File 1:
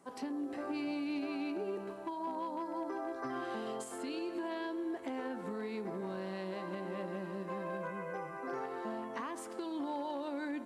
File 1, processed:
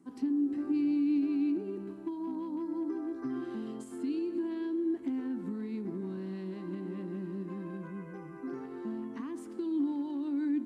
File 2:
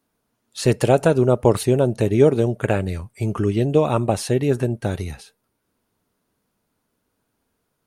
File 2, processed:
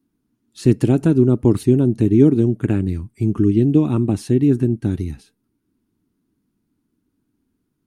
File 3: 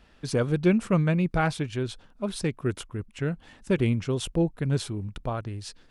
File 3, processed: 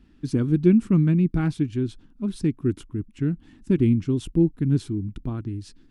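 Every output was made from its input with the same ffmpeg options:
-af "lowshelf=f=410:t=q:w=3:g=10,volume=-7.5dB"

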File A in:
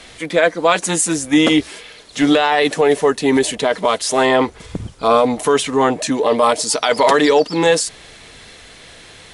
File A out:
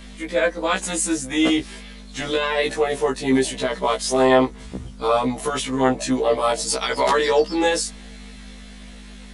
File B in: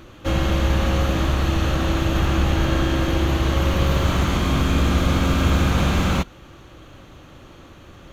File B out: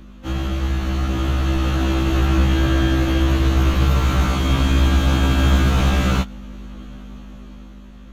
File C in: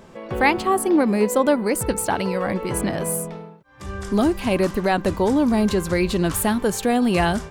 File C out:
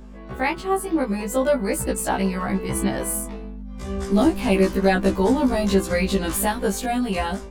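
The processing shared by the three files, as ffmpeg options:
-af "aeval=exprs='val(0)+0.0282*(sin(2*PI*50*n/s)+sin(2*PI*2*50*n/s)/2+sin(2*PI*3*50*n/s)/3+sin(2*PI*4*50*n/s)/4+sin(2*PI*5*50*n/s)/5)':c=same,dynaudnorm=f=300:g=9:m=15.5dB,afftfilt=real='re*1.73*eq(mod(b,3),0)':imag='im*1.73*eq(mod(b,3),0)':win_size=2048:overlap=0.75,volume=-3.5dB"

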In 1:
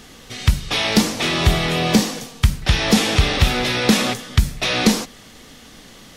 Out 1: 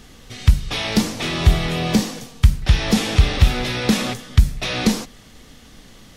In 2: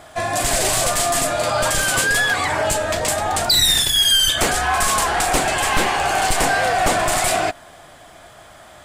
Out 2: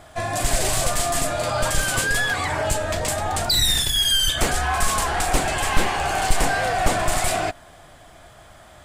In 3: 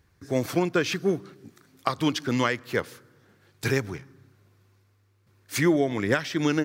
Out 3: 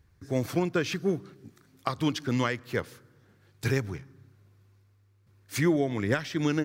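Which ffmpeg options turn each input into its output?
-af "lowshelf=f=130:g=10,volume=-4.5dB"

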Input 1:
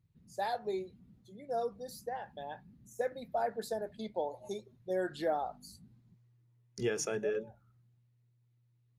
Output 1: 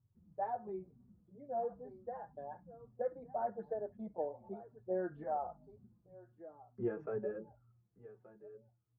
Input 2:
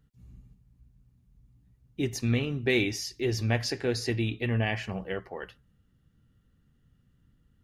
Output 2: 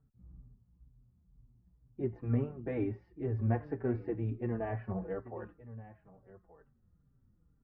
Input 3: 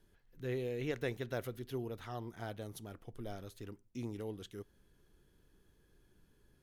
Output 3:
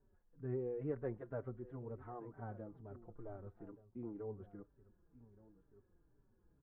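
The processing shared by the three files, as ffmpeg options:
-filter_complex "[0:a]lowpass=f=1.3k:w=0.5412,lowpass=f=1.3k:w=1.3066,aecho=1:1:1176:0.133,asplit=2[a][b];[b]adelay=4.7,afreqshift=-2.1[c];[a][c]amix=inputs=2:normalize=1,volume=-1dB"

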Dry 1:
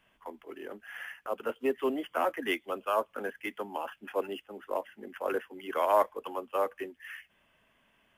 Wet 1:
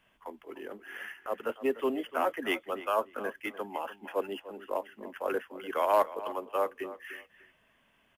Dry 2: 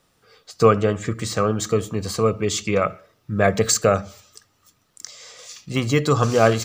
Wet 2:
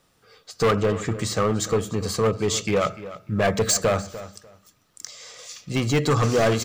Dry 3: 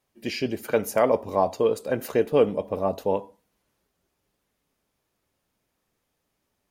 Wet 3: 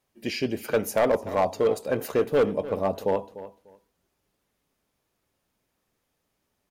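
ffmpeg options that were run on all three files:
-filter_complex "[0:a]volume=15.5dB,asoftclip=hard,volume=-15.5dB,asplit=2[a][b];[b]adelay=297,lowpass=f=3.9k:p=1,volume=-15dB,asplit=2[c][d];[d]adelay=297,lowpass=f=3.9k:p=1,volume=0.2[e];[a][c][e]amix=inputs=3:normalize=0"

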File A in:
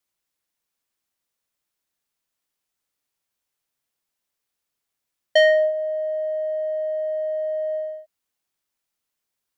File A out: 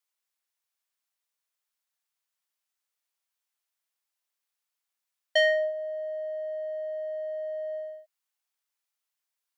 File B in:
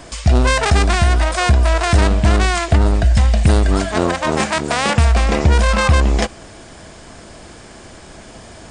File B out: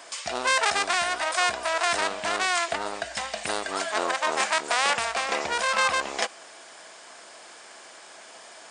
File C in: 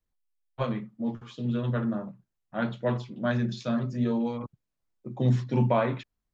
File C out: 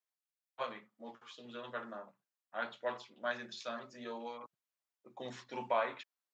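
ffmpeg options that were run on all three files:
-af "highpass=710,volume=-4dB"

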